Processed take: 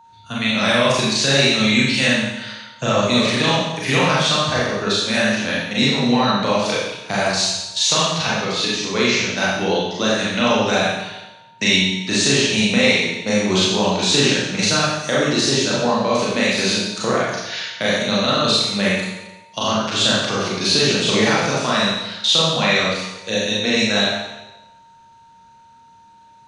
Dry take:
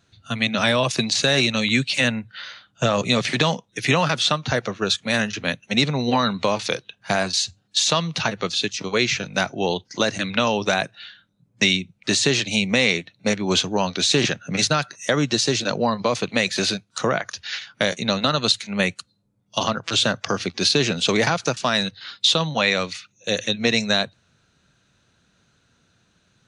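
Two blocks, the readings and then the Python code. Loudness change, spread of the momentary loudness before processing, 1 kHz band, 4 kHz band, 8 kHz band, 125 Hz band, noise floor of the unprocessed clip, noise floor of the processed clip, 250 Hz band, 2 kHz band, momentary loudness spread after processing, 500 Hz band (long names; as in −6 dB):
+4.0 dB, 7 LU, +3.5 dB, +4.0 dB, +4.0 dB, +2.5 dB, −66 dBFS, −49 dBFS, +4.5 dB, +3.5 dB, 7 LU, +4.0 dB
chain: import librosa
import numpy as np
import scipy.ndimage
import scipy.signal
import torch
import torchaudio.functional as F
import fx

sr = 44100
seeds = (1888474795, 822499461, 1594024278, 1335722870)

y = fx.vibrato(x, sr, rate_hz=0.97, depth_cents=6.5)
y = fx.rev_schroeder(y, sr, rt60_s=1.0, comb_ms=29, drr_db=-7.0)
y = y + 10.0 ** (-42.0 / 20.0) * np.sin(2.0 * np.pi * 920.0 * np.arange(len(y)) / sr)
y = y * 10.0 ** (-4.0 / 20.0)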